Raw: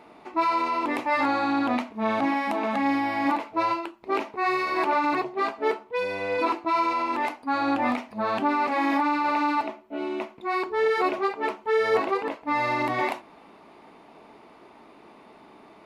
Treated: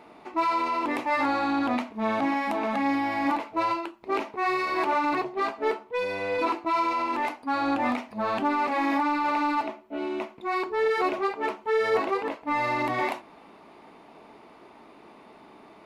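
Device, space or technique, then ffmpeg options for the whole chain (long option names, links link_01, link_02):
parallel distortion: -filter_complex "[0:a]asplit=2[link_01][link_02];[link_02]asoftclip=type=hard:threshold=-29dB,volume=-9.5dB[link_03];[link_01][link_03]amix=inputs=2:normalize=0,volume=-2.5dB"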